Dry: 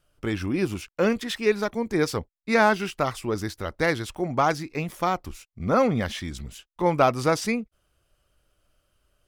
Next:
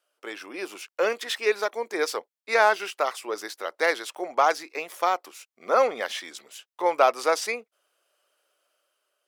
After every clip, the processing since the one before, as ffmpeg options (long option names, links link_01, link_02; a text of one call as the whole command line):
ffmpeg -i in.wav -af "highpass=frequency=440:width=0.5412,highpass=frequency=440:width=1.3066,dynaudnorm=framelen=230:gausssize=7:maxgain=5dB,volume=-3dB" out.wav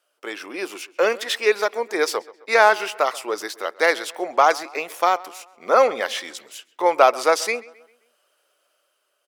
ffmpeg -i in.wav -filter_complex "[0:a]asplit=2[link_01][link_02];[link_02]adelay=132,lowpass=frequency=3600:poles=1,volume=-20.5dB,asplit=2[link_03][link_04];[link_04]adelay=132,lowpass=frequency=3600:poles=1,volume=0.48,asplit=2[link_05][link_06];[link_06]adelay=132,lowpass=frequency=3600:poles=1,volume=0.48,asplit=2[link_07][link_08];[link_08]adelay=132,lowpass=frequency=3600:poles=1,volume=0.48[link_09];[link_01][link_03][link_05][link_07][link_09]amix=inputs=5:normalize=0,volume=5dB" out.wav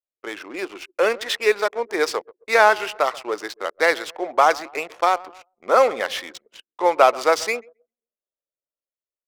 ffmpeg -i in.wav -af "anlmdn=0.631,adynamicsmooth=sensitivity=8:basefreq=1500" out.wav